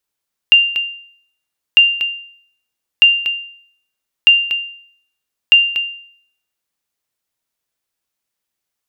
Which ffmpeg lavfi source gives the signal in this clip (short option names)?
-f lavfi -i "aevalsrc='0.841*(sin(2*PI*2790*mod(t,1.25))*exp(-6.91*mod(t,1.25)/0.61)+0.355*sin(2*PI*2790*max(mod(t,1.25)-0.24,0))*exp(-6.91*max(mod(t,1.25)-0.24,0)/0.61))':d=6.25:s=44100"